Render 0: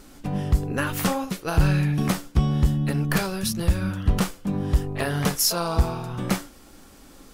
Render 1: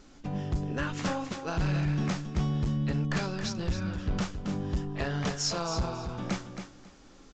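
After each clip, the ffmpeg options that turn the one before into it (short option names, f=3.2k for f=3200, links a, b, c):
-af "aresample=16000,volume=17.5dB,asoftclip=hard,volume=-17.5dB,aresample=44100,aecho=1:1:272|544|816:0.376|0.0752|0.015,volume=-6.5dB"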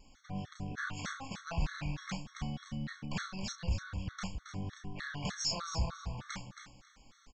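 -filter_complex "[0:a]equalizer=f=350:w=1:g=-12.5,asplit=2[a][b];[b]adelay=31,volume=-6dB[c];[a][c]amix=inputs=2:normalize=0,afftfilt=real='re*gt(sin(2*PI*3.3*pts/sr)*(1-2*mod(floor(b*sr/1024/1100),2)),0)':imag='im*gt(sin(2*PI*3.3*pts/sr)*(1-2*mod(floor(b*sr/1024/1100),2)),0)':win_size=1024:overlap=0.75,volume=-2dB"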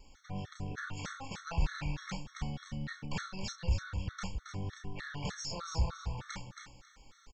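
-filter_complex "[0:a]acrossover=split=690[a][b];[b]alimiter=level_in=9.5dB:limit=-24dB:level=0:latency=1:release=293,volume=-9.5dB[c];[a][c]amix=inputs=2:normalize=0,aecho=1:1:2.2:0.37,volume=1dB"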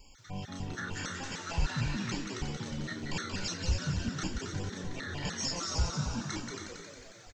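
-filter_complex "[0:a]highshelf=f=2.7k:g=7.5,asplit=2[a][b];[b]asplit=8[c][d][e][f][g][h][i][j];[c]adelay=180,afreqshift=84,volume=-5dB[k];[d]adelay=360,afreqshift=168,volume=-9.4dB[l];[e]adelay=540,afreqshift=252,volume=-13.9dB[m];[f]adelay=720,afreqshift=336,volume=-18.3dB[n];[g]adelay=900,afreqshift=420,volume=-22.7dB[o];[h]adelay=1080,afreqshift=504,volume=-27.2dB[p];[i]adelay=1260,afreqshift=588,volume=-31.6dB[q];[j]adelay=1440,afreqshift=672,volume=-36.1dB[r];[k][l][m][n][o][p][q][r]amix=inputs=8:normalize=0[s];[a][s]amix=inputs=2:normalize=0"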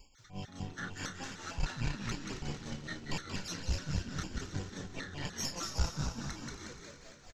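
-af "aeval=exprs='0.126*(cos(1*acos(clip(val(0)/0.126,-1,1)))-cos(1*PI/2))+0.0355*(cos(2*acos(clip(val(0)/0.126,-1,1)))-cos(2*PI/2))+0.00398*(cos(6*acos(clip(val(0)/0.126,-1,1)))-cos(6*PI/2))':c=same,tremolo=f=4.8:d=0.69,aecho=1:1:237|474|711|948|1185|1422:0.266|0.144|0.0776|0.0419|0.0226|0.0122,volume=-1.5dB"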